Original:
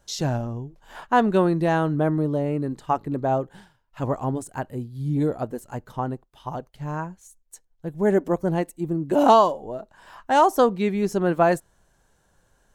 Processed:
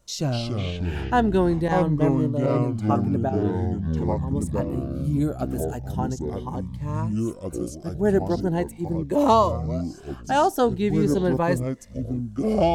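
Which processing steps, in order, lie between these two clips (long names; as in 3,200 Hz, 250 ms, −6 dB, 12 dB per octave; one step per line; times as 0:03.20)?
0:01.68–0:02.56: downward expander −19 dBFS
0:03.29–0:04.31: downward compressor 1.5 to 1, threshold −48 dBFS, peak gain reduction 10.5 dB
0:05.04–0:06.12: high-shelf EQ 5,100 Hz +10 dB
delay with pitch and tempo change per echo 216 ms, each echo −5 semitones, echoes 3
phaser whose notches keep moving one way rising 0.42 Hz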